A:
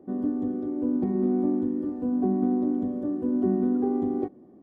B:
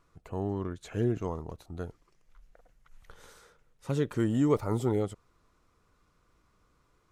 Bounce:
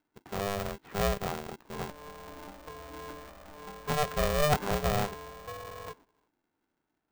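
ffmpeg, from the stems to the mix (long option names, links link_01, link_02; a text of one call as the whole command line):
ffmpeg -i stem1.wav -i stem2.wav -filter_complex "[0:a]acompressor=threshold=-29dB:ratio=6,highpass=frequency=700:width_type=q:width=4.7,adelay=1650,volume=-6dB[link_01];[1:a]volume=-0.5dB[link_02];[link_01][link_02]amix=inputs=2:normalize=0,agate=range=-13dB:threshold=-54dB:ratio=16:detection=peak,lowpass=frequency=2200:width=0.5412,lowpass=frequency=2200:width=1.3066,aeval=exprs='val(0)*sgn(sin(2*PI*300*n/s))':channel_layout=same" out.wav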